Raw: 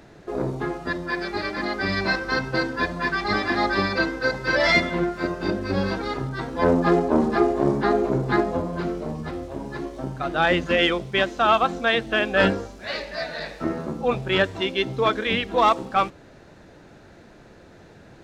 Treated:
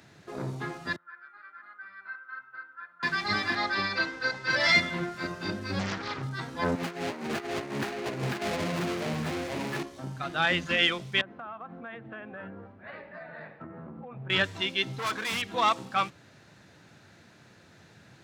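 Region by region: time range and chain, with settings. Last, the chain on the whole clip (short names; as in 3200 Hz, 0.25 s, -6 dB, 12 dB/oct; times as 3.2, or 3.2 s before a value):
0.96–3.03 band-pass 1400 Hz, Q 12 + air absorption 250 m
3.55–4.5 Bessel low-pass 5800 Hz + bell 130 Hz -7 dB 1.9 oct
5.79–6.23 LPF 5600 Hz + Doppler distortion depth 0.79 ms
6.75–9.83 median filter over 41 samples + negative-ratio compressor -27 dBFS, ratio -0.5 + overdrive pedal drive 23 dB, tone 7100 Hz, clips at -14.5 dBFS
11.21–14.3 Bessel low-pass 1200 Hz, order 4 + notches 50/100/150/200/250/300/350/400/450 Hz + compressor 8:1, threshold -30 dBFS
14.91–15.42 overloaded stage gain 26 dB + dynamic EQ 1100 Hz, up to +7 dB, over -44 dBFS, Q 1.2
whole clip: HPF 97 Hz 24 dB/oct; bell 440 Hz -12 dB 2.6 oct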